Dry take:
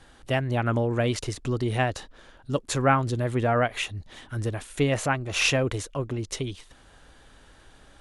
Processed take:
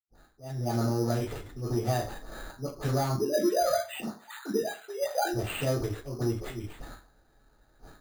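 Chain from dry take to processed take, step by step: 3.06–5.25 sine-wave speech; gate with hold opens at -41 dBFS; low-pass opened by the level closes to 3000 Hz, open at -20 dBFS; dynamic EQ 1500 Hz, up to -6 dB, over -40 dBFS, Q 2; compressor 4:1, threshold -38 dBFS, peak gain reduction 17.5 dB; auto swell 0.138 s; AGC gain up to 14.5 dB; dispersion highs, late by 52 ms, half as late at 900 Hz; hard clip -19 dBFS, distortion -17 dB; reverb RT60 0.35 s, pre-delay 76 ms; careless resampling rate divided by 8×, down none, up hold

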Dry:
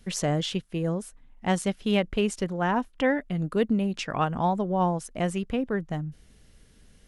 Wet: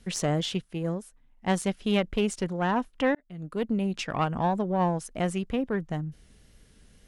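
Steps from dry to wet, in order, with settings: one diode to ground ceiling -17.5 dBFS; wow and flutter 24 cents; 0.73–1.5 upward expander 1.5:1, over -36 dBFS; 3.15–3.89 fade in

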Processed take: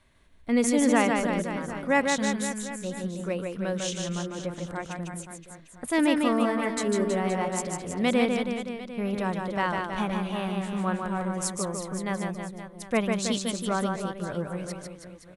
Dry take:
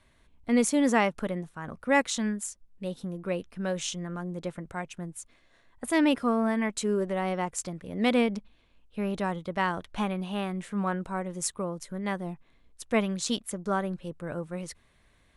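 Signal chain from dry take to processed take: reverse bouncing-ball echo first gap 0.15 s, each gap 1.15×, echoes 5

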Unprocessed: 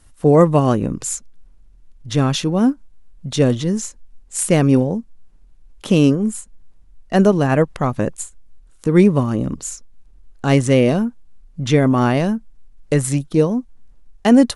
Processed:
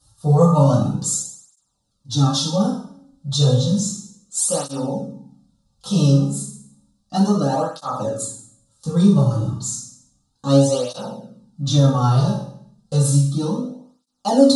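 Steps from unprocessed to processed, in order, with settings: EQ curve 140 Hz 0 dB, 350 Hz -10 dB, 1200 Hz +3 dB, 2100 Hz -26 dB, 3900 Hz +9 dB, 11000 Hz +1 dB; reverb RT60 0.65 s, pre-delay 3 ms, DRR -9 dB; tape flanging out of phase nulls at 0.32 Hz, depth 4.5 ms; gain -7 dB

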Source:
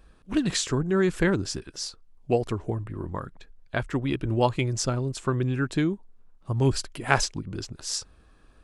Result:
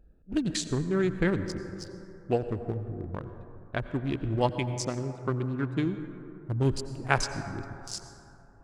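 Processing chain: Wiener smoothing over 41 samples; 4.49–5.86 HPF 120 Hz; plate-style reverb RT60 3 s, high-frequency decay 0.3×, pre-delay 75 ms, DRR 10 dB; gain -3 dB

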